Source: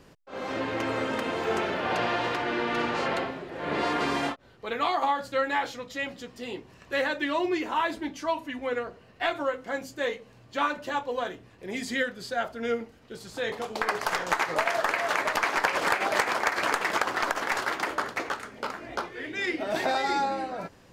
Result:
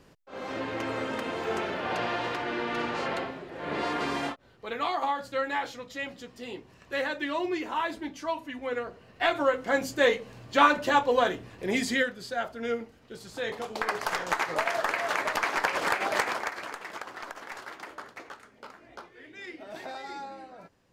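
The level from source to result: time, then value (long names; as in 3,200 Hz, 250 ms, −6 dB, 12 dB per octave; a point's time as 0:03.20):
0:08.61 −3 dB
0:09.86 +7 dB
0:11.71 +7 dB
0:12.19 −2 dB
0:16.27 −2 dB
0:16.70 −13 dB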